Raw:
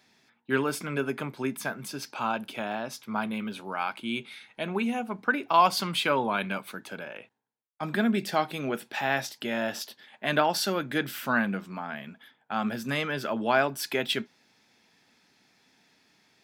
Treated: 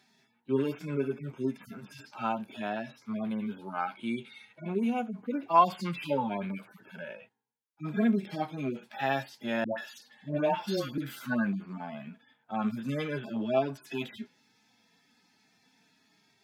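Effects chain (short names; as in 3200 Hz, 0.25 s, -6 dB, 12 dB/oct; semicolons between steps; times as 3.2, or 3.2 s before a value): median-filter separation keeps harmonic; 9.64–10.98 dispersion highs, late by 0.139 s, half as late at 710 Hz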